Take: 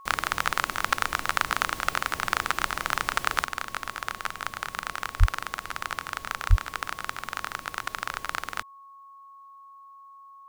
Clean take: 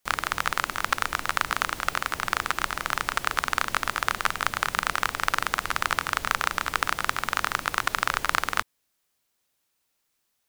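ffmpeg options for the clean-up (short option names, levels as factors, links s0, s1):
-filter_complex "[0:a]bandreject=f=1100:w=30,asplit=3[s0][s1][s2];[s0]afade=t=out:st=5.19:d=0.02[s3];[s1]highpass=f=140:w=0.5412,highpass=f=140:w=1.3066,afade=t=in:st=5.19:d=0.02,afade=t=out:st=5.31:d=0.02[s4];[s2]afade=t=in:st=5.31:d=0.02[s5];[s3][s4][s5]amix=inputs=3:normalize=0,asplit=3[s6][s7][s8];[s6]afade=t=out:st=6.49:d=0.02[s9];[s7]highpass=f=140:w=0.5412,highpass=f=140:w=1.3066,afade=t=in:st=6.49:d=0.02,afade=t=out:st=6.61:d=0.02[s10];[s8]afade=t=in:st=6.61:d=0.02[s11];[s9][s10][s11]amix=inputs=3:normalize=0,asetnsamples=n=441:p=0,asendcmd='3.45 volume volume 7dB',volume=1"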